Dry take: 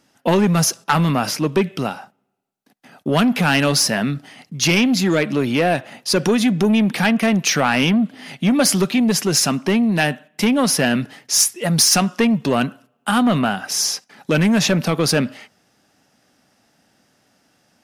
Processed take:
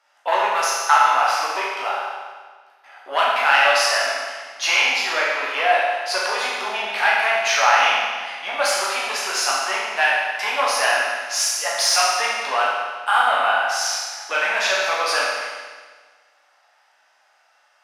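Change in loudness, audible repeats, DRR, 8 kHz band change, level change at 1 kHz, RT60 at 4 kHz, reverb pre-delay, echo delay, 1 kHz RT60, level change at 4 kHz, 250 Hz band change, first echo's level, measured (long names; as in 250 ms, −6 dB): −1.5 dB, no echo audible, −6.0 dB, −4.5 dB, +6.0 dB, 1.4 s, 11 ms, no echo audible, 1.5 s, −0.5 dB, −30.0 dB, no echo audible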